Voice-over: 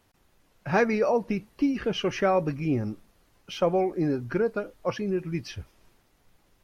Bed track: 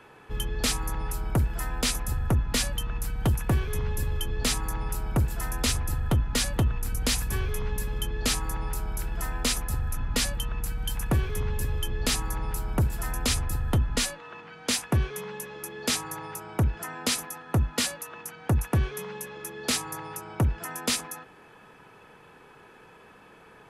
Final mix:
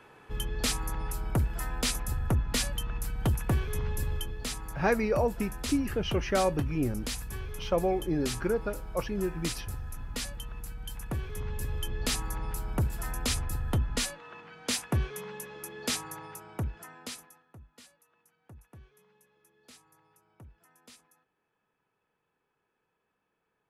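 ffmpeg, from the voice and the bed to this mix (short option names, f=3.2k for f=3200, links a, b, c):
-filter_complex "[0:a]adelay=4100,volume=-3.5dB[a];[1:a]volume=2.5dB,afade=t=out:st=4.14:d=0.24:silence=0.473151,afade=t=in:st=11.16:d=0.69:silence=0.530884,afade=t=out:st=15.84:d=1.7:silence=0.0630957[b];[a][b]amix=inputs=2:normalize=0"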